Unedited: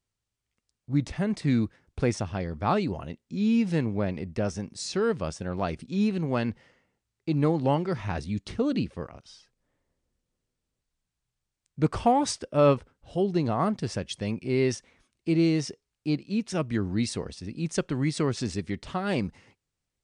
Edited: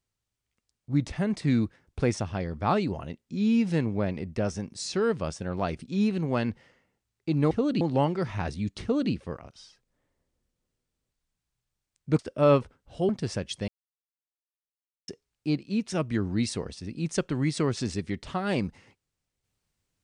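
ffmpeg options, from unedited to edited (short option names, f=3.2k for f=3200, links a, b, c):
-filter_complex "[0:a]asplit=7[a][b][c][d][e][f][g];[a]atrim=end=7.512[h];[b]atrim=start=8.518:end=8.822[i];[c]atrim=start=7.508:end=11.892[j];[d]atrim=start=12.348:end=13.252[k];[e]atrim=start=13.688:end=14.28,asetpts=PTS-STARTPTS,afade=t=out:st=0.588:d=0.004:c=hsin[l];[f]atrim=start=14.28:end=15.68,asetpts=PTS-STARTPTS,volume=0[m];[g]atrim=start=15.68,asetpts=PTS-STARTPTS,afade=t=in:d=0.004:c=hsin[n];[h][i]acrossfade=d=0.004:c1=hsin:c2=hsin[o];[o][j]acrossfade=d=0.004:c1=hsin:c2=hsin[p];[p][k]acrossfade=d=0.004:c1=hsin:c2=hsin[q];[l][m][n]concat=n=3:v=0:a=1[r];[q][r]acrossfade=d=0.004:c1=hsin:c2=hsin"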